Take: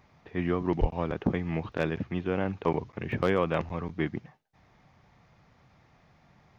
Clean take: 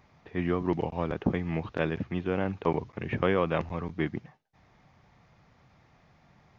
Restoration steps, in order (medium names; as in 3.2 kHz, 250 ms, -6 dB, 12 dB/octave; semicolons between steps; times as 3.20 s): clip repair -13.5 dBFS; de-plosive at 0.80 s; interpolate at 1.72/3.12 s, 1.6 ms